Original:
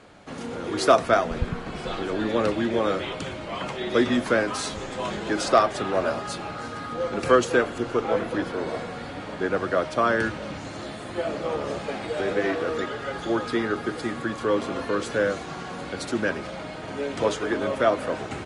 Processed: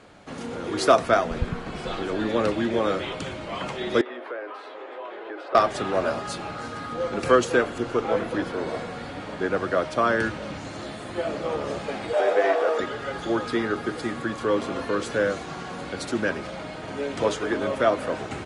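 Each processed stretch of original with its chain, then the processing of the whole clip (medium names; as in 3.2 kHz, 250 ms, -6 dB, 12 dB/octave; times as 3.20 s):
4.01–5.55 s: steep high-pass 350 Hz + compression 2.5:1, threshold -32 dBFS + distance through air 480 m
12.13–12.80 s: high-pass 490 Hz + peaking EQ 660 Hz +11.5 dB 1.2 oct + band-stop 4.1 kHz, Q 22
whole clip: none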